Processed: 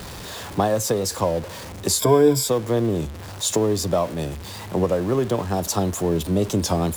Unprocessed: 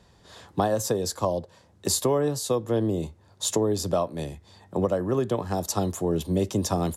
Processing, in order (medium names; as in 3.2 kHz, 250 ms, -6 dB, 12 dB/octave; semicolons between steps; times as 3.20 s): jump at every zero crossing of -33 dBFS; 1.99–2.48 s: rippled EQ curve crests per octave 1.7, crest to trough 15 dB; warped record 33 1/3 rpm, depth 100 cents; trim +2.5 dB